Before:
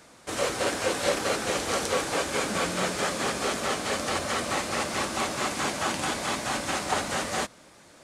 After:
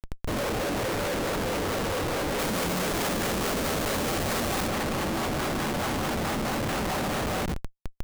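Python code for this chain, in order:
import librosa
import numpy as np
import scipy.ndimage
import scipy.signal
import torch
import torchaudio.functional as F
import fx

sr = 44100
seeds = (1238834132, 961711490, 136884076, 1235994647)

y = fx.echo_feedback(x, sr, ms=124, feedback_pct=51, wet_db=-12.5)
y = np.sign(y) * np.maximum(np.abs(y) - 10.0 ** (-51.0 / 20.0), 0.0)
y = fx.echo_wet_lowpass(y, sr, ms=113, feedback_pct=46, hz=990.0, wet_db=-18.5)
y = fx.dmg_noise_colour(y, sr, seeds[0], colour='pink', level_db=-48.0)
y = fx.tilt_eq(y, sr, slope=-2.0)
y = fx.schmitt(y, sr, flips_db=-33.0)
y = fx.high_shelf(y, sr, hz=4000.0, db=6.0, at=(2.39, 4.68))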